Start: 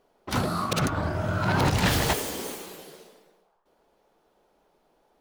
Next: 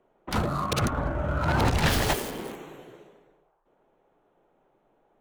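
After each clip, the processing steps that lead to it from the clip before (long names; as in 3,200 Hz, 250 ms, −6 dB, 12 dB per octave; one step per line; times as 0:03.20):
adaptive Wiener filter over 9 samples
frequency shifter −30 Hz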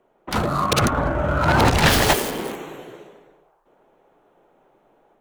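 low-shelf EQ 170 Hz −5.5 dB
automatic gain control gain up to 4.5 dB
level +4.5 dB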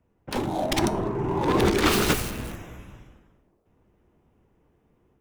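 frequency shifter −460 Hz
tuned comb filter 69 Hz, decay 0.44 s, harmonics odd, mix 50%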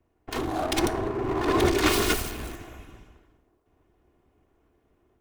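lower of the sound and its delayed copy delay 2.8 ms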